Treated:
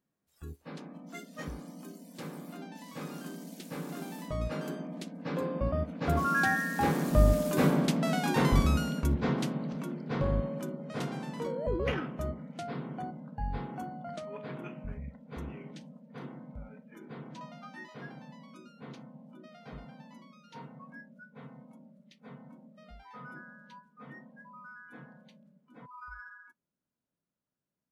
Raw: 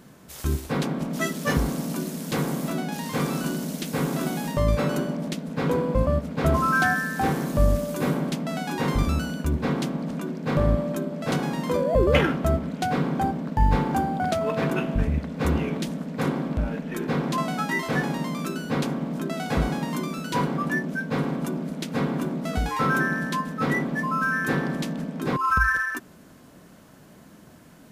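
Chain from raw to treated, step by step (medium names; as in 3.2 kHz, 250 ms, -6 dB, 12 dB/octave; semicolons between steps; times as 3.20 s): Doppler pass-by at 7.99 s, 20 m/s, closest 19 m; spectral noise reduction 16 dB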